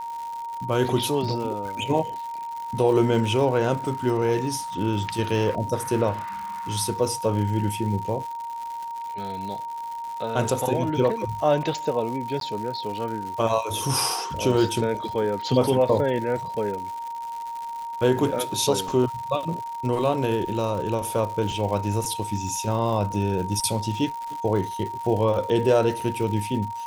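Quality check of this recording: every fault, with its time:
crackle 170 per s -32 dBFS
whine 930 Hz -30 dBFS
12.40–12.41 s: dropout

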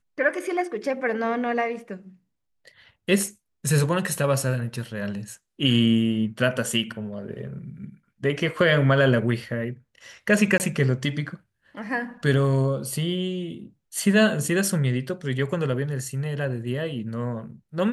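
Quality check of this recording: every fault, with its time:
10.58–10.60 s: dropout 19 ms

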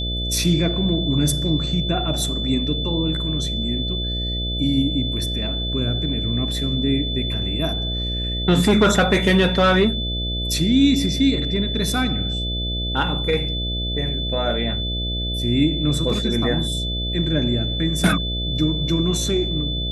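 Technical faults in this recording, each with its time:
buzz 60 Hz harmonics 11 -26 dBFS
whine 3.5 kHz -26 dBFS

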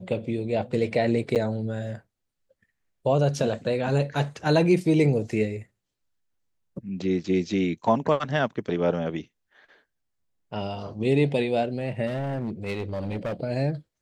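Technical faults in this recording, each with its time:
1.35–1.36 s: dropout 8.1 ms
12.06–13.34 s: clipped -25.5 dBFS

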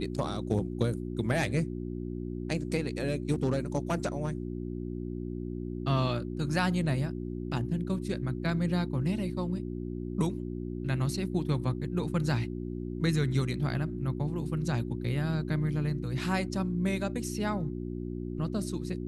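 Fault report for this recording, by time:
hum 60 Hz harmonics 6 -36 dBFS

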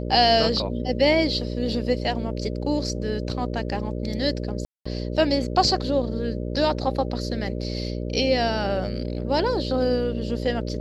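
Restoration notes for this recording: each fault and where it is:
buzz 60 Hz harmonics 10 -29 dBFS
4.65–4.86 s: dropout 205 ms

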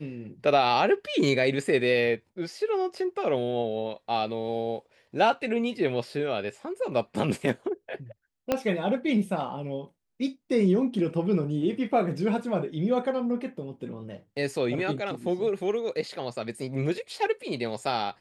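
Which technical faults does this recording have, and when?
8.52 s: pop -11 dBFS

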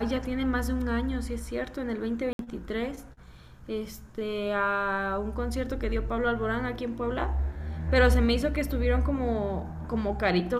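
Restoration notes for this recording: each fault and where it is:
2.33–2.39 s: dropout 62 ms

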